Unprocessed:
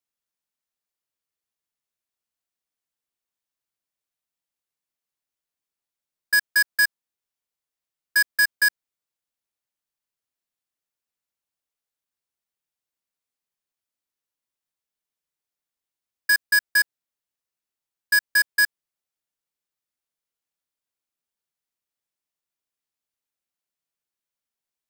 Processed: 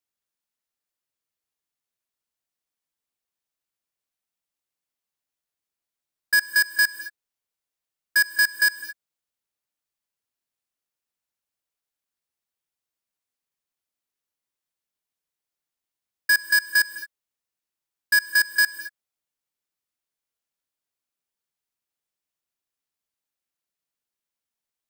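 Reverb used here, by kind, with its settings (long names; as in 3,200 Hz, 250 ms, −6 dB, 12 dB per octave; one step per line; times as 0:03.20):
reverb whose tail is shaped and stops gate 250 ms rising, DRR 11.5 dB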